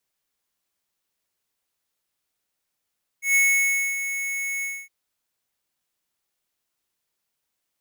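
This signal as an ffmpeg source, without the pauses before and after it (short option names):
-f lavfi -i "aevalsrc='0.133*(2*lt(mod(2200*t,1),0.5)-1)':d=1.664:s=44100,afade=t=in:d=0.132,afade=t=out:st=0.132:d=0.605:silence=0.299,afade=t=out:st=1.41:d=0.254"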